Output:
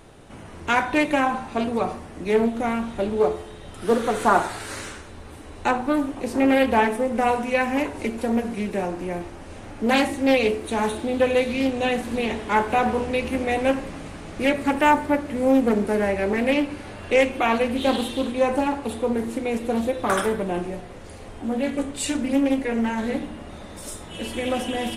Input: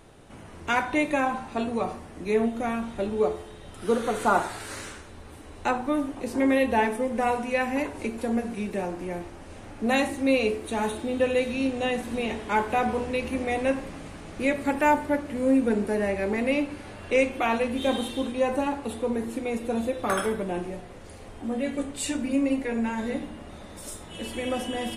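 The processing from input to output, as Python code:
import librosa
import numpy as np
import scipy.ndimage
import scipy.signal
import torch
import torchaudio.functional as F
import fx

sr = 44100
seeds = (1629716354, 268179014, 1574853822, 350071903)

y = fx.doppler_dist(x, sr, depth_ms=0.3)
y = F.gain(torch.from_numpy(y), 4.0).numpy()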